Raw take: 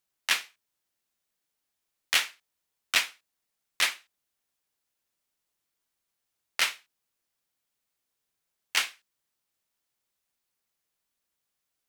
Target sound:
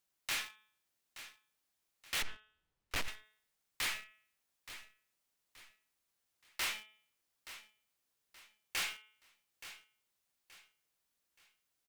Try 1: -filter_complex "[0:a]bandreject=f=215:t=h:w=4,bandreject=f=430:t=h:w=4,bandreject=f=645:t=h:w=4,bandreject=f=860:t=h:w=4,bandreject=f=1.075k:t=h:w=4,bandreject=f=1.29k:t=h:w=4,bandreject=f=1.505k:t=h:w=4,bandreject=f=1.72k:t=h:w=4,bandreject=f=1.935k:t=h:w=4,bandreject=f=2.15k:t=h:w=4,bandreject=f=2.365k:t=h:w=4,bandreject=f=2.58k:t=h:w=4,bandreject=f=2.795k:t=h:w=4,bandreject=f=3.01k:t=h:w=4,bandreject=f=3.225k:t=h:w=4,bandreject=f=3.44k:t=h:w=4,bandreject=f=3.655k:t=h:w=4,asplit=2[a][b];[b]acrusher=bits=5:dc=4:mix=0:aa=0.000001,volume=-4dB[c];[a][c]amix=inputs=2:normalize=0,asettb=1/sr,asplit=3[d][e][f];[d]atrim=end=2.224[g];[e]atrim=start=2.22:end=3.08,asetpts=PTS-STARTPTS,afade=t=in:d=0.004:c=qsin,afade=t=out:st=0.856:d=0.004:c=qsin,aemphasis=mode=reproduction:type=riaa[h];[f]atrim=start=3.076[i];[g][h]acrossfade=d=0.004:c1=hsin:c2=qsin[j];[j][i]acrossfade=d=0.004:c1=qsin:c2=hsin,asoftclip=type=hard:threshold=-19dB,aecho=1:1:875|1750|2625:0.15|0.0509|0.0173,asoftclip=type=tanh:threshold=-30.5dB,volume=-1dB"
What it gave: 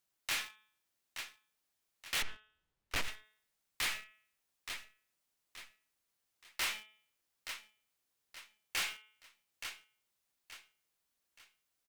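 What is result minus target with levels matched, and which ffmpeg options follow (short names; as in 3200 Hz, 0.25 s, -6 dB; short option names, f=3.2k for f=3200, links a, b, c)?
hard clip: distortion -7 dB
-filter_complex "[0:a]bandreject=f=215:t=h:w=4,bandreject=f=430:t=h:w=4,bandreject=f=645:t=h:w=4,bandreject=f=860:t=h:w=4,bandreject=f=1.075k:t=h:w=4,bandreject=f=1.29k:t=h:w=4,bandreject=f=1.505k:t=h:w=4,bandreject=f=1.72k:t=h:w=4,bandreject=f=1.935k:t=h:w=4,bandreject=f=2.15k:t=h:w=4,bandreject=f=2.365k:t=h:w=4,bandreject=f=2.58k:t=h:w=4,bandreject=f=2.795k:t=h:w=4,bandreject=f=3.01k:t=h:w=4,bandreject=f=3.225k:t=h:w=4,bandreject=f=3.44k:t=h:w=4,bandreject=f=3.655k:t=h:w=4,asplit=2[a][b];[b]acrusher=bits=5:dc=4:mix=0:aa=0.000001,volume=-4dB[c];[a][c]amix=inputs=2:normalize=0,asettb=1/sr,asplit=3[d][e][f];[d]atrim=end=2.224[g];[e]atrim=start=2.22:end=3.08,asetpts=PTS-STARTPTS,afade=t=in:d=0.004:c=qsin,afade=t=out:st=0.856:d=0.004:c=qsin,aemphasis=mode=reproduction:type=riaa[h];[f]atrim=start=3.076[i];[g][h]acrossfade=d=0.004:c1=hsin:c2=qsin[j];[j][i]acrossfade=d=0.004:c1=qsin:c2=hsin,asoftclip=type=hard:threshold=-29.5dB,aecho=1:1:875|1750|2625:0.15|0.0509|0.0173,asoftclip=type=tanh:threshold=-30.5dB,volume=-1dB"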